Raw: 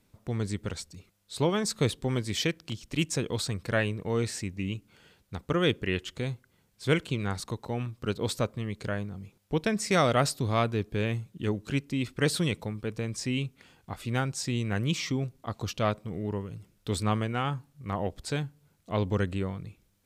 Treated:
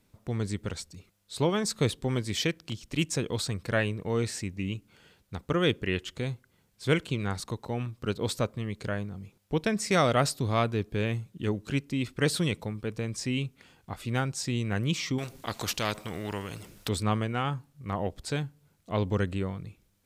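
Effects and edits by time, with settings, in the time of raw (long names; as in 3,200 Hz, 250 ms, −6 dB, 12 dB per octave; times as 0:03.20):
0:15.18–0:16.89: every bin compressed towards the loudest bin 2 to 1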